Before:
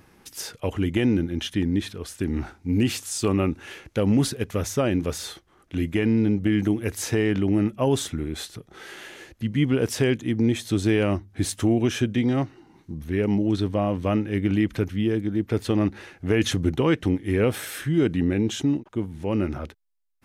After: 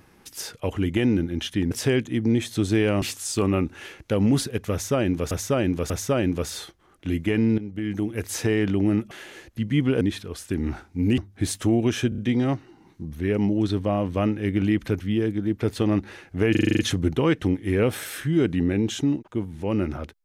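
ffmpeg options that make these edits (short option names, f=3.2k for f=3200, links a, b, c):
-filter_complex "[0:a]asplit=19[a][b][c][d][e][f][g][h][i][j][k][l][m][n][o][p][q][r][s];[a]atrim=end=1.712[t];[b]atrim=start=9.848:end=11.162[u];[c]atrim=start=2.878:end=5.172[v];[d]atrim=start=4.578:end=5.172[w];[e]atrim=start=4.578:end=6.26,asetpts=PTS-STARTPTS,afade=t=out:st=1.678:d=0.004:c=hsin:silence=0.177828[x];[f]atrim=start=6.26:end=7.792,asetpts=PTS-STARTPTS,afade=t=in:d=0.78:silence=0.177828[y];[g]atrim=start=8.948:end=9.852[z];[h]atrim=start=1.708:end=2.882[aa];[i]atrim=start=11.158:end=12.102[ab];[j]atrim=start=12.068:end=12.102[ac];[k]atrim=start=12.068:end=12.102[ad];[l]atrim=start=12.068:end=16.442[ae];[m]atrim=start=16.398:end=16.442[af];[n]atrim=start=16.398:end=16.442[ag];[o]atrim=start=16.398:end=16.442[ah];[p]atrim=start=16.398:end=16.442[ai];[q]atrim=start=16.398:end=16.442[aj];[r]atrim=start=16.398:end=16.442[ak];[s]atrim=start=16.398[al];[t][u]acrossfade=d=0.004:c1=hsin:c2=hsin[am];[am][v]acrossfade=d=0.004:c1=hsin:c2=hsin[an];[an][w]acrossfade=d=0.004:c1=hsin:c2=hsin[ao];[x][y]concat=n=2:v=0:a=1[ap];[ao][ap]acrossfade=d=0.004:c1=hsin:c2=hsin[aq];[aq][z]acrossfade=d=0.004:c1=hsin:c2=hsin[ar];[ar][aa]acrossfade=d=0.004:c1=hsin:c2=hsin[as];[as][ab]acrossfade=d=0.004:c1=hsin:c2=hsin[at];[at][ac]acrossfade=d=0.004:c1=hsin:c2=hsin[au];[au][ad]acrossfade=d=0.004:c1=hsin:c2=hsin[av];[av][ae]acrossfade=d=0.004:c1=hsin:c2=hsin[aw];[aw][af]acrossfade=d=0.004:c1=hsin:c2=hsin[ax];[ax][ag]acrossfade=d=0.004:c1=hsin:c2=hsin[ay];[ay][ah]acrossfade=d=0.004:c1=hsin:c2=hsin[az];[az][ai]acrossfade=d=0.004:c1=hsin:c2=hsin[ba];[ba][aj]acrossfade=d=0.004:c1=hsin:c2=hsin[bb];[bb][ak]acrossfade=d=0.004:c1=hsin:c2=hsin[bc];[bc][al]acrossfade=d=0.004:c1=hsin:c2=hsin"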